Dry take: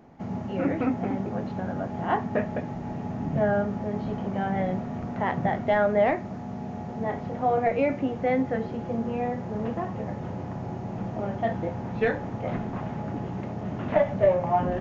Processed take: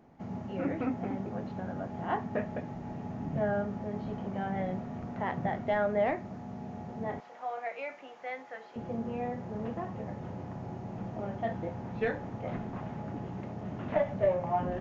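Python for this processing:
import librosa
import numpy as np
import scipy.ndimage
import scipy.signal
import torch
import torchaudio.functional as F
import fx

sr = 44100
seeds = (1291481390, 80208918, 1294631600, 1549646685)

y = fx.highpass(x, sr, hz=910.0, slope=12, at=(7.2, 8.76))
y = y * librosa.db_to_amplitude(-6.5)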